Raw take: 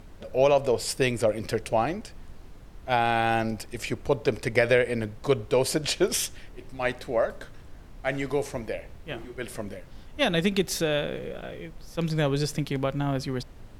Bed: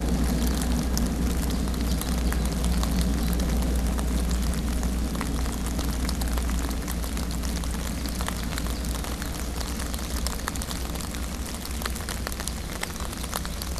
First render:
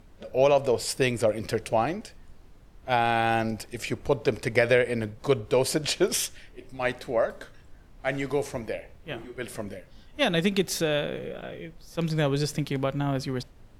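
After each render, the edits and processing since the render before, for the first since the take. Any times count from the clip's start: noise print and reduce 6 dB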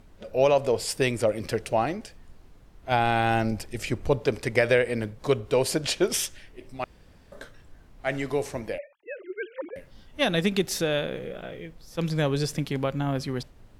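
2.91–4.19 low shelf 160 Hz +7 dB; 6.84–7.32 room tone; 8.78–9.76 sine-wave speech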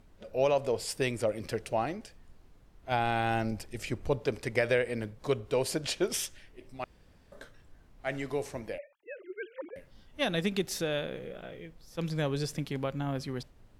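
gain -6 dB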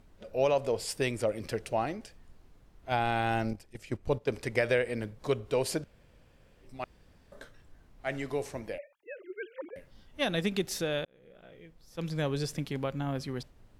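3.53–4.28 gate -36 dBFS, range -11 dB; 5.84–6.63 room tone; 11.05–12.27 fade in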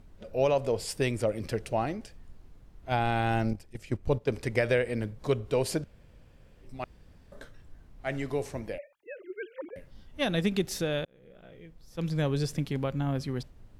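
low shelf 250 Hz +6.5 dB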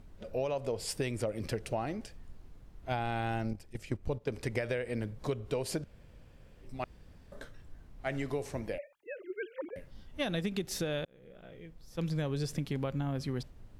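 compressor, threshold -30 dBFS, peak gain reduction 9.5 dB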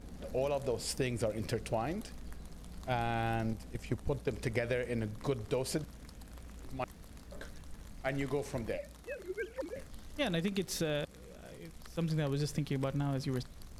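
add bed -24.5 dB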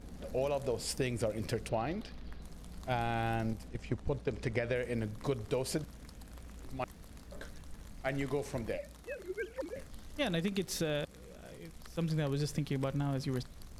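1.69–2.42 resonant high shelf 5700 Hz -10.5 dB, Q 1.5; 3.68–4.76 air absorption 58 m

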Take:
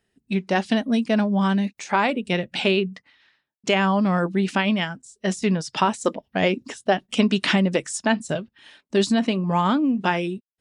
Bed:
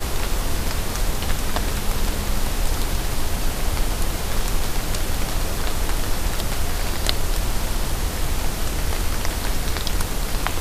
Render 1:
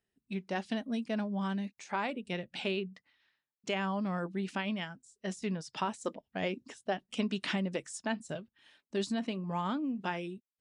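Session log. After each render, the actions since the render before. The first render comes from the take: gain -13.5 dB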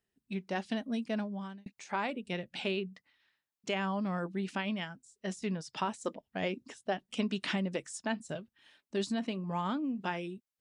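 1.15–1.66 fade out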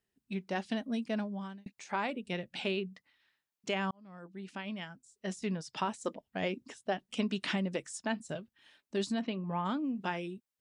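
3.91–5.35 fade in; 9.21–9.64 LPF 5300 Hz -> 2600 Hz 24 dB/oct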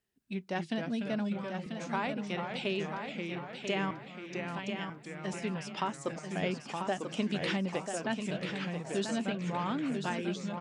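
echoes that change speed 0.206 s, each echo -2 st, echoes 3, each echo -6 dB; feedback echo 0.99 s, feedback 28%, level -7 dB

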